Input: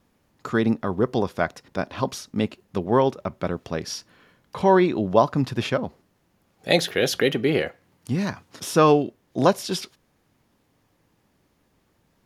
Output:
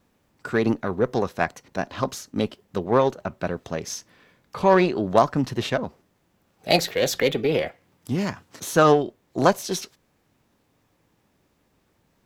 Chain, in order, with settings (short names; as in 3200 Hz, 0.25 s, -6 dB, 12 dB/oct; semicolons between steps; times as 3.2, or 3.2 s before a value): added harmonics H 6 -26 dB, 7 -44 dB, 8 -25 dB, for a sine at -2.5 dBFS; formant shift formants +2 st